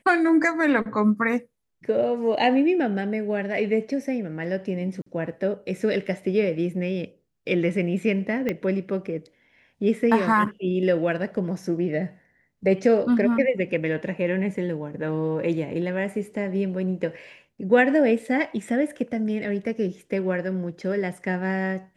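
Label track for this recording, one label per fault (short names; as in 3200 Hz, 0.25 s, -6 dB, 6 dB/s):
5.020000	5.060000	gap 44 ms
8.490000	8.490000	pop -14 dBFS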